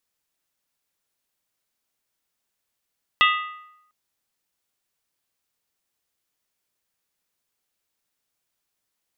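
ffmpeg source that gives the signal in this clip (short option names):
-f lavfi -i "aevalsrc='0.188*pow(10,-3*t/0.84)*sin(2*PI*1240*t)+0.15*pow(10,-3*t/0.665)*sin(2*PI*1976.6*t)+0.119*pow(10,-3*t/0.575)*sin(2*PI*2648.6*t)+0.0944*pow(10,-3*t/0.554)*sin(2*PI*2847*t)+0.075*pow(10,-3*t/0.516)*sin(2*PI*3289.7*t)+0.0596*pow(10,-3*t/0.492)*sin(2*PI*3618.3*t)':d=0.7:s=44100"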